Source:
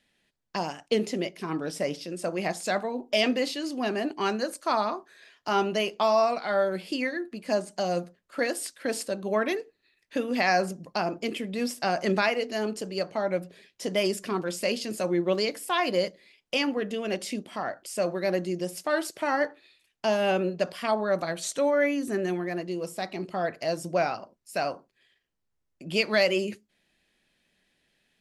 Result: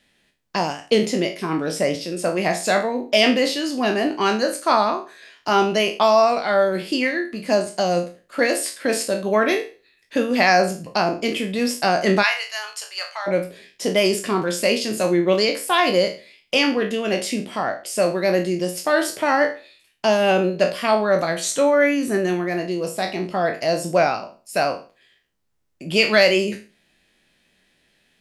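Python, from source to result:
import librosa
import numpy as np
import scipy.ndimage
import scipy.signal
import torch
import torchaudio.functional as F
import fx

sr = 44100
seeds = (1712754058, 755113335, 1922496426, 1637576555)

y = fx.spec_trails(x, sr, decay_s=0.35)
y = fx.highpass(y, sr, hz=970.0, slope=24, at=(12.22, 13.26), fade=0.02)
y = F.gain(torch.from_numpy(y), 7.0).numpy()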